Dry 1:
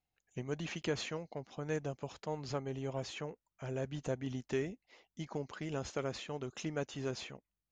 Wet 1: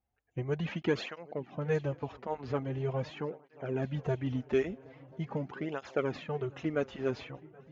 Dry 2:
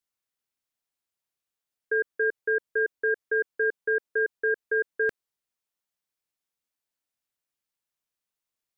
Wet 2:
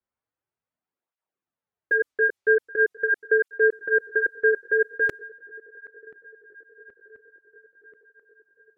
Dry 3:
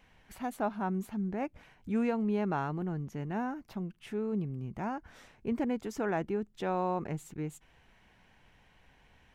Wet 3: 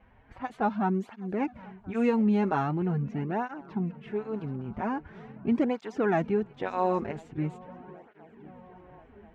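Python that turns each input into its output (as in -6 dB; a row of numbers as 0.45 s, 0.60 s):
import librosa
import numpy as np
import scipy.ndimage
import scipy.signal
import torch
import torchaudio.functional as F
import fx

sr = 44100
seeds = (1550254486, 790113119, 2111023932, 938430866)

y = fx.echo_swing(x, sr, ms=1034, ratio=3, feedback_pct=60, wet_db=-22.0)
y = fx.env_lowpass(y, sr, base_hz=1400.0, full_db=-23.0)
y = fx.flanger_cancel(y, sr, hz=0.43, depth_ms=7.0)
y = F.gain(torch.from_numpy(y), 8.0).numpy()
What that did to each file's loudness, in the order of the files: +5.5 LU, +4.5 LU, +5.0 LU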